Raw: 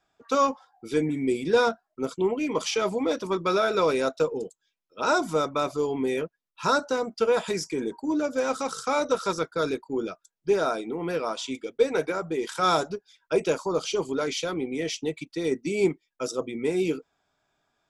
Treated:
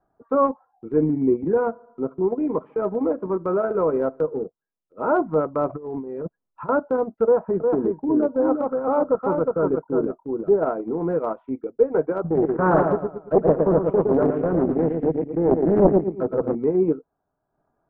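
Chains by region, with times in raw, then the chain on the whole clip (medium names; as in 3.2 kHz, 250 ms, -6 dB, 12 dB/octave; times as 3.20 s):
1.43–4.45 s: feedback comb 140 Hz, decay 1.3 s, mix 30% + feedback delay 72 ms, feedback 56%, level -21.5 dB + three bands compressed up and down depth 40%
5.69–6.69 s: block-companded coder 7-bit + compressor with a negative ratio -36 dBFS
7.24–10.63 s: low-pass 1.5 kHz + delay 359 ms -4 dB
12.24–16.55 s: bass shelf 210 Hz +9.5 dB + feedback delay 113 ms, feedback 44%, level -4 dB + loudspeaker Doppler distortion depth 0.94 ms
whole clip: Bessel low-pass 820 Hz, order 6; transient shaper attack -3 dB, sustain -7 dB; trim +7.5 dB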